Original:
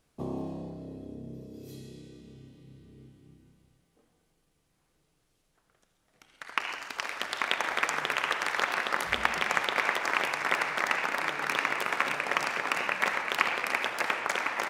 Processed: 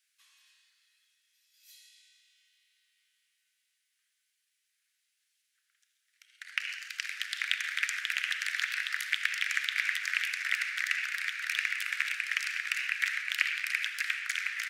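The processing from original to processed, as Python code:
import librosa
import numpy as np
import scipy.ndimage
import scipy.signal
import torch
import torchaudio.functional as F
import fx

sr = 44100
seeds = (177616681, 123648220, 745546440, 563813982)

y = scipy.signal.sosfilt(scipy.signal.butter(8, 1600.0, 'highpass', fs=sr, output='sos'), x)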